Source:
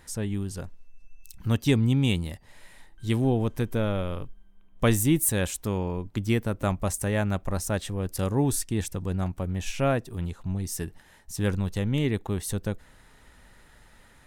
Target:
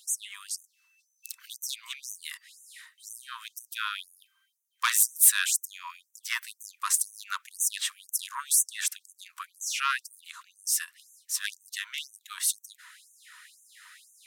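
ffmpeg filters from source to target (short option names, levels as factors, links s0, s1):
-af "aeval=exprs='0.398*(cos(1*acos(clip(val(0)/0.398,-1,1)))-cos(1*PI/2))+0.141*(cos(5*acos(clip(val(0)/0.398,-1,1)))-cos(5*PI/2))':c=same,afftfilt=real='re*gte(b*sr/1024,930*pow(6000/930,0.5+0.5*sin(2*PI*2*pts/sr)))':imag='im*gte(b*sr/1024,930*pow(6000/930,0.5+0.5*sin(2*PI*2*pts/sr)))':win_size=1024:overlap=0.75"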